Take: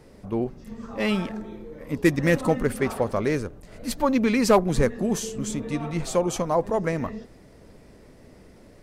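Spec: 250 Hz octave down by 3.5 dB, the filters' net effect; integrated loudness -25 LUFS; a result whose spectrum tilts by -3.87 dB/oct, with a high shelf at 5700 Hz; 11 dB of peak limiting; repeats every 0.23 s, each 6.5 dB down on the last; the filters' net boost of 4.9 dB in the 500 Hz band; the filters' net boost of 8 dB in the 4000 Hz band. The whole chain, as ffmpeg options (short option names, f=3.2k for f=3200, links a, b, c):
-af "equalizer=f=250:t=o:g=-7.5,equalizer=f=500:t=o:g=7.5,equalizer=f=4k:t=o:g=7.5,highshelf=f=5.7k:g=6.5,alimiter=limit=-14.5dB:level=0:latency=1,aecho=1:1:230|460|690|920|1150|1380:0.473|0.222|0.105|0.0491|0.0231|0.0109,volume=0.5dB"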